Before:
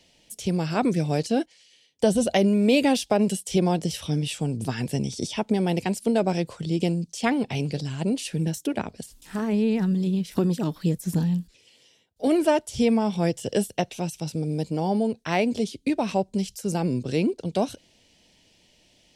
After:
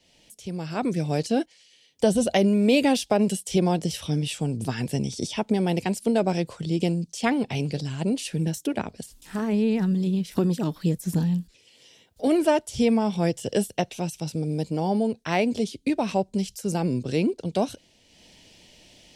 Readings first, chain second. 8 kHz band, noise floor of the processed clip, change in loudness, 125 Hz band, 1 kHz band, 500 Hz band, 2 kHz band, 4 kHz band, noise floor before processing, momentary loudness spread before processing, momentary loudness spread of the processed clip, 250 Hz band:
0.0 dB, −60 dBFS, 0.0 dB, 0.0 dB, 0.0 dB, 0.0 dB, 0.0 dB, 0.0 dB, −61 dBFS, 8 LU, 8 LU, 0.0 dB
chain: fade in at the beginning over 1.25 s
upward compression, threshold −44 dBFS

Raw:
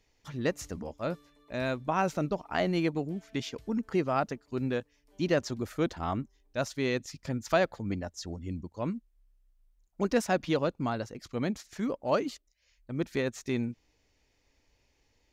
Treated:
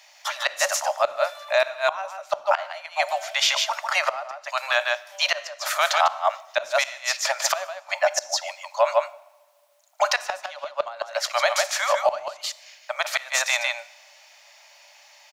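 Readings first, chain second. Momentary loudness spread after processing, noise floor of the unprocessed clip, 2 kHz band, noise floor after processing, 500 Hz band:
10 LU, −72 dBFS, +13.5 dB, −54 dBFS, +6.0 dB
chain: Chebyshev high-pass filter 570 Hz, order 10
on a send: single-tap delay 149 ms −5.5 dB
on the sum: gate with flip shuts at −25 dBFS, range −26 dB
coupled-rooms reverb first 0.75 s, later 2.1 s, DRR 16.5 dB
boost into a limiter +30.5 dB
level −8 dB

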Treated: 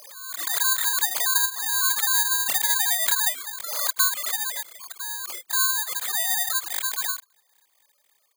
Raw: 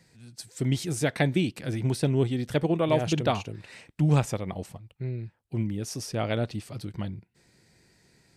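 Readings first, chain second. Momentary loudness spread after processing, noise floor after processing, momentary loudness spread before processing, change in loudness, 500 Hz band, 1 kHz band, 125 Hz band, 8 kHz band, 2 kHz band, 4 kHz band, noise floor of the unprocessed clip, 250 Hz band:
11 LU, −67 dBFS, 16 LU, +6.5 dB, −16.5 dB, +3.5 dB, below −40 dB, +18.0 dB, +10.0 dB, +12.5 dB, −69 dBFS, below −30 dB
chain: three sine waves on the formant tracks
downward compressor 10 to 1, threshold −26 dBFS, peak gain reduction 11 dB
ring modulation 1,300 Hz
resonant band-pass 1,500 Hz, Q 1.1
bad sample-rate conversion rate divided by 8×, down filtered, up zero stuff
background raised ahead of every attack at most 42 dB per second
level +2 dB

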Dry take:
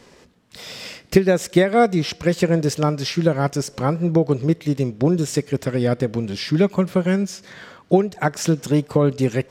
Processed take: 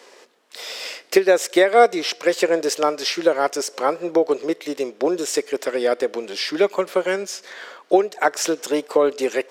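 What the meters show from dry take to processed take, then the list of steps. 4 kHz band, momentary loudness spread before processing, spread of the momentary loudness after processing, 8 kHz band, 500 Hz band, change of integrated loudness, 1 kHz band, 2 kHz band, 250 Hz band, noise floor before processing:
+3.5 dB, 7 LU, 12 LU, +3.5 dB, +2.0 dB, −0.5 dB, +3.5 dB, +3.5 dB, −6.0 dB, −51 dBFS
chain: high-pass filter 380 Hz 24 dB per octave
level +3.5 dB

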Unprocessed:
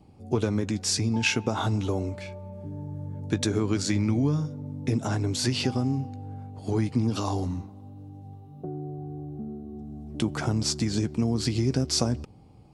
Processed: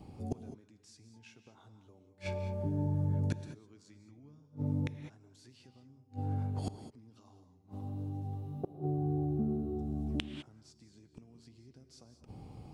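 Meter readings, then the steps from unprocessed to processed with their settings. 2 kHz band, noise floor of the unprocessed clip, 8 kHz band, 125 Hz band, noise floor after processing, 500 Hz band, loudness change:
−18.0 dB, −50 dBFS, below −25 dB, −8.5 dB, −64 dBFS, −11.5 dB, −9.0 dB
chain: gate with flip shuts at −26 dBFS, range −36 dB
reverb whose tail is shaped and stops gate 230 ms rising, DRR 9.5 dB
level +3 dB

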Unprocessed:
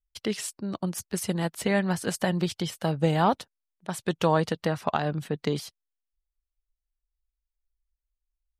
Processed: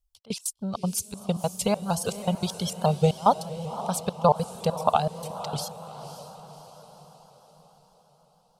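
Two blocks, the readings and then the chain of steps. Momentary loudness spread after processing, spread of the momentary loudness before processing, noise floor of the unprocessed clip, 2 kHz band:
17 LU, 9 LU, below −85 dBFS, −9.5 dB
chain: reverb reduction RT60 1.6 s
phaser with its sweep stopped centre 760 Hz, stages 4
gate pattern "xx..x.x.xx.xx" 198 BPM −24 dB
on a send: feedback delay with all-pass diffusion 547 ms, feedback 52%, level −12 dB
on the sum: pitch modulation by a square or saw wave saw up 6.3 Hz, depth 100 cents
level +7.5 dB

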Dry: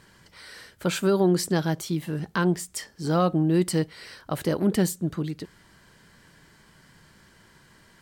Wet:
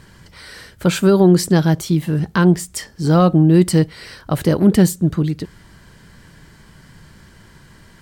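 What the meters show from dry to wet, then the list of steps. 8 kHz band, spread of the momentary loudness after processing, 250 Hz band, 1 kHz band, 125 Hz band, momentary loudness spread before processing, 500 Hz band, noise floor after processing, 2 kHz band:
+6.5 dB, 11 LU, +10.5 dB, +7.0 dB, +12.0 dB, 16 LU, +8.0 dB, −47 dBFS, +6.5 dB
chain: low-shelf EQ 170 Hz +10.5 dB
level +6.5 dB

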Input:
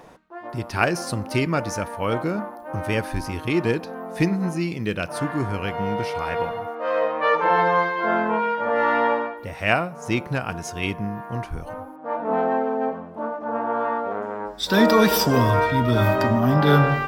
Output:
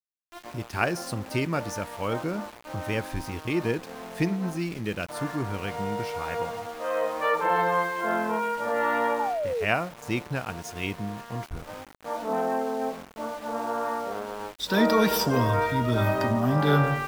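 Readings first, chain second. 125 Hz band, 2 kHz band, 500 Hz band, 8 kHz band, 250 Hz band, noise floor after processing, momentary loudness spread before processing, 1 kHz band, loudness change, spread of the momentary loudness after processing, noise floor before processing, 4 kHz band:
−5.0 dB, −5.0 dB, −5.0 dB, −4.0 dB, −5.0 dB, −48 dBFS, 12 LU, −5.0 dB, −5.0 dB, 12 LU, −39 dBFS, −4.5 dB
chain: centre clipping without the shift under −34 dBFS
sound drawn into the spectrogram fall, 0:09.19–0:09.65, 410–900 Hz −23 dBFS
level −5 dB

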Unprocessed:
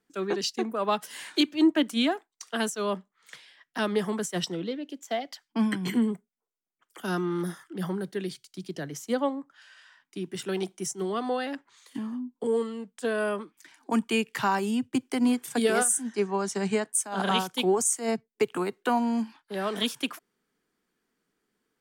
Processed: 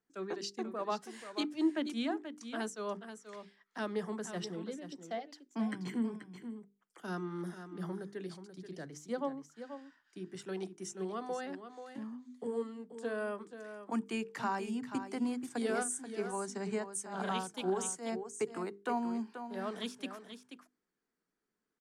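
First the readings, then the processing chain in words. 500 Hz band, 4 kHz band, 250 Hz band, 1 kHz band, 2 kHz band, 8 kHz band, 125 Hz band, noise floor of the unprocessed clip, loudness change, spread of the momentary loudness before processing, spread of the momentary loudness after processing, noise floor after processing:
−9.5 dB, −13.5 dB, −9.5 dB, −9.0 dB, −10.5 dB, −12.5 dB, −9.0 dB, −85 dBFS, −10.0 dB, 12 LU, 13 LU, below −85 dBFS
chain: low-pass filter 8,100 Hz 12 dB per octave
parametric band 3,100 Hz −6 dB 0.89 octaves
mains-hum notches 50/100/150/200/250/300/350/400/450 Hz
on a send: single-tap delay 483 ms −10 dB
on the sum: level −9 dB

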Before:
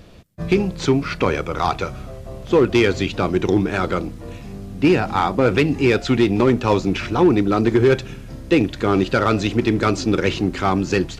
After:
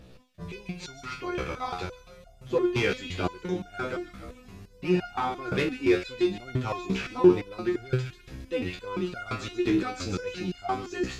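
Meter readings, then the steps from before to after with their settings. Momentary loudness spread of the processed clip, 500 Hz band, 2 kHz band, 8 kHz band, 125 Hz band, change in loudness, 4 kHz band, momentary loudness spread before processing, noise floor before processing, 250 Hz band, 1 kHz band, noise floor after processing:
14 LU, −10.0 dB, −10.0 dB, can't be measured, −11.5 dB, −10.5 dB, −9.5 dB, 14 LU, −36 dBFS, −10.5 dB, −11.0 dB, −53 dBFS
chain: delay with a high-pass on its return 139 ms, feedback 42%, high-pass 1,800 Hz, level −6 dB
phase shifter 0.77 Hz, delay 3.1 ms, feedback 26%
step-sequenced resonator 5.8 Hz 64–710 Hz

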